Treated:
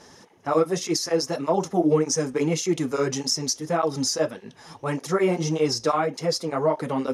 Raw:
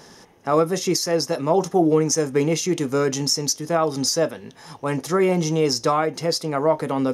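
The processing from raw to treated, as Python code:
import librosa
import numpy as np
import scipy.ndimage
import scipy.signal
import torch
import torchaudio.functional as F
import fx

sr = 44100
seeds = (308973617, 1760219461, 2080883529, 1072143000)

y = scipy.signal.sosfilt(scipy.signal.butter(2, 11000.0, 'lowpass', fs=sr, output='sos'), x)
y = fx.flanger_cancel(y, sr, hz=1.7, depth_ms=7.9)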